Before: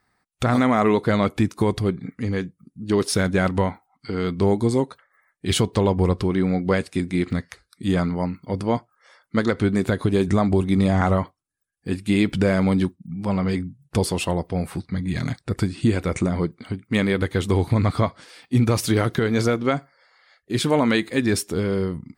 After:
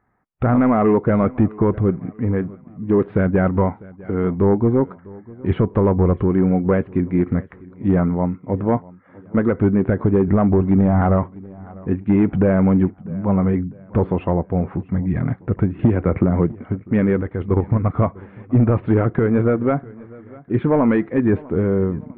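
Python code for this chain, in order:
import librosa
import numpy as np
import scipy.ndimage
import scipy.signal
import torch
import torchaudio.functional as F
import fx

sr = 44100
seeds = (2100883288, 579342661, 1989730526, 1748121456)

y = fx.level_steps(x, sr, step_db=9, at=(17.21, 17.96))
y = np.clip(y, -10.0 ** (-14.0 / 20.0), 10.0 ** (-14.0 / 20.0))
y = scipy.ndimage.gaussian_filter1d(y, 5.3, mode='constant')
y = fx.echo_feedback(y, sr, ms=649, feedback_pct=43, wet_db=-22)
y = fx.band_squash(y, sr, depth_pct=100, at=(15.79, 16.52))
y = y * librosa.db_to_amplitude(5.0)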